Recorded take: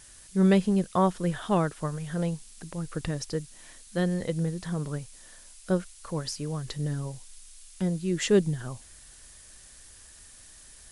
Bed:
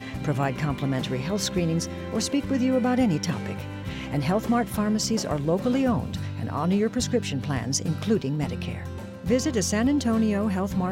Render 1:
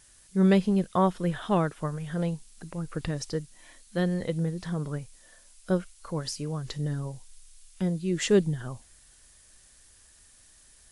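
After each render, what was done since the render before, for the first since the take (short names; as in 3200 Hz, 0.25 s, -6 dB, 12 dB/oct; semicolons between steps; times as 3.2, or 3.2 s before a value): noise print and reduce 6 dB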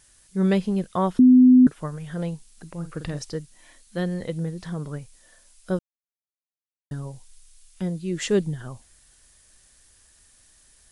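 1.19–1.67 bleep 253 Hz -9 dBFS; 2.74–3.19 doubler 47 ms -9.5 dB; 5.79–6.91 mute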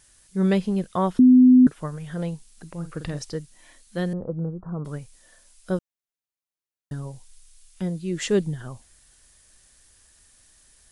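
4.13–4.85 steep low-pass 1400 Hz 72 dB/oct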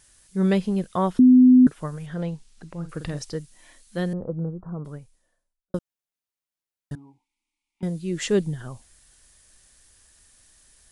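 2.06–2.89 air absorption 68 m; 4.33–5.74 studio fade out; 6.95–7.83 vowel filter u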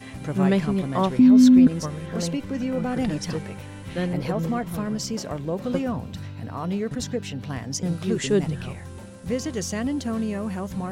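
add bed -4 dB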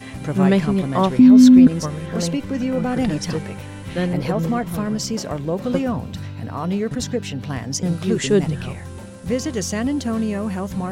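gain +4.5 dB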